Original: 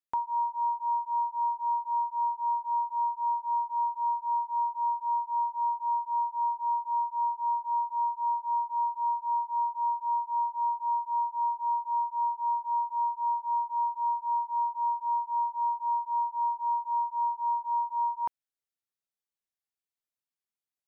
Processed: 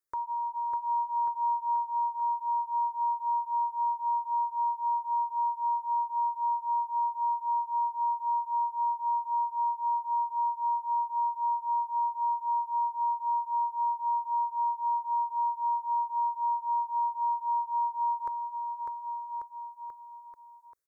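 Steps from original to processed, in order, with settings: limiter -29 dBFS, peak gain reduction 5.5 dB; fixed phaser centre 780 Hz, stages 6; on a send: bouncing-ball echo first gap 0.6 s, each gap 0.9×, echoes 5; on the sum: gain +6 dB

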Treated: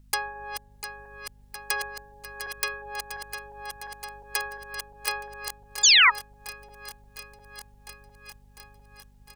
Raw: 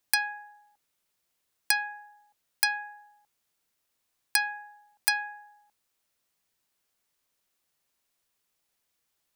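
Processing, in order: regenerating reverse delay 0.352 s, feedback 81%, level -9 dB; in parallel at -1.5 dB: compressor 8:1, threshold -40 dBFS, peak gain reduction 20 dB; on the sum: hum 50 Hz, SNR 17 dB; painted sound fall, 5.83–6.1, 1800–7400 Hz -11 dBFS; harmoniser -12 st -4 dB, -7 st -8 dB; gain -6 dB

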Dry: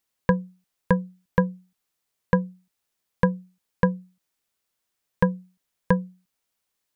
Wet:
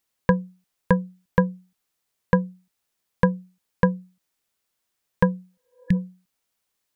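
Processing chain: spectral repair 5.5–5.94, 320–1700 Hz both; gain +1.5 dB

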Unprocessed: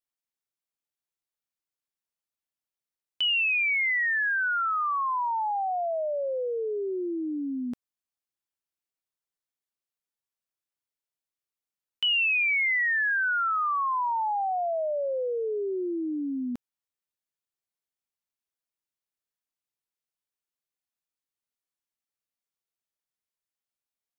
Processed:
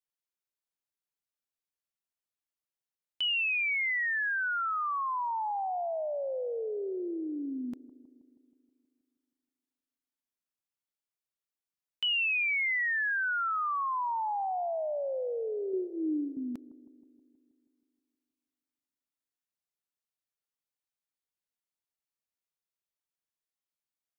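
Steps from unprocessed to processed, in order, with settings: 3.27–3.82 HPF 380 Hz 24 dB/oct; 15.72–16.37 doubler 13 ms -2 dB; analogue delay 0.159 s, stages 1024, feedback 64%, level -18 dB; gain -4.5 dB

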